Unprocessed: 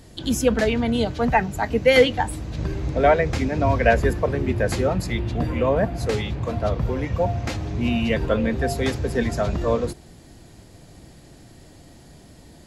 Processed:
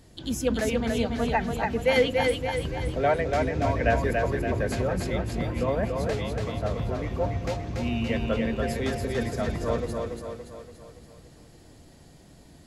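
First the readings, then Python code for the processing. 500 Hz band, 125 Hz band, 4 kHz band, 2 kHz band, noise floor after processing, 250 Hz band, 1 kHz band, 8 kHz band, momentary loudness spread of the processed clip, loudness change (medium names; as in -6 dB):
-5.0 dB, -5.0 dB, -5.0 dB, -5.0 dB, -52 dBFS, -5.0 dB, -5.0 dB, -5.0 dB, 7 LU, -5.0 dB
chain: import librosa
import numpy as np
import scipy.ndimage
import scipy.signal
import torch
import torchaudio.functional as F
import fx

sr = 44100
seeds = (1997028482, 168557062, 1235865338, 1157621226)

y = fx.echo_split(x, sr, split_hz=340.0, low_ms=219, high_ms=285, feedback_pct=52, wet_db=-3.5)
y = y * librosa.db_to_amplitude(-7.0)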